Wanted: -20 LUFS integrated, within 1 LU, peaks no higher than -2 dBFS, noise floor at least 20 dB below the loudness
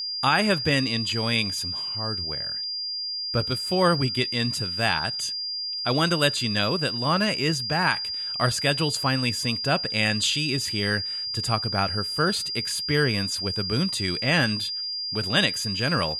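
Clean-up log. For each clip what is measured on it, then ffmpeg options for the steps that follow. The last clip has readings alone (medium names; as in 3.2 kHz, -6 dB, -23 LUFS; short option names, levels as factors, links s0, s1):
steady tone 4.8 kHz; tone level -28 dBFS; loudness -24.0 LUFS; peak level -7.5 dBFS; loudness target -20.0 LUFS
-> -af "bandreject=f=4800:w=30"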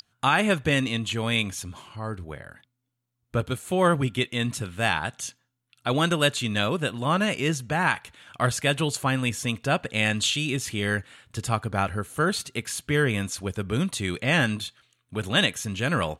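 steady tone not found; loudness -25.5 LUFS; peak level -8.0 dBFS; loudness target -20.0 LUFS
-> -af "volume=1.88"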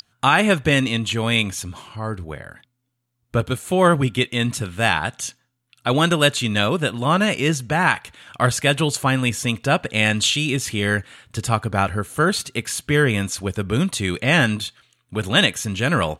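loudness -20.0 LUFS; peak level -2.5 dBFS; noise floor -72 dBFS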